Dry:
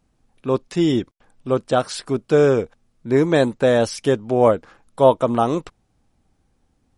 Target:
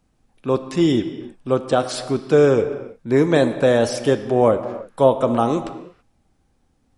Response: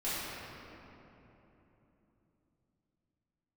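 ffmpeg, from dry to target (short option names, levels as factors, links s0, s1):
-filter_complex "[0:a]acrossover=split=470[s0][s1];[s1]acompressor=threshold=0.141:ratio=2.5[s2];[s0][s2]amix=inputs=2:normalize=0,asplit=2[s3][s4];[1:a]atrim=start_sample=2205,afade=t=out:st=0.39:d=0.01,atrim=end_sample=17640,lowshelf=f=140:g=-9.5[s5];[s4][s5]afir=irnorm=-1:irlink=0,volume=0.2[s6];[s3][s6]amix=inputs=2:normalize=0"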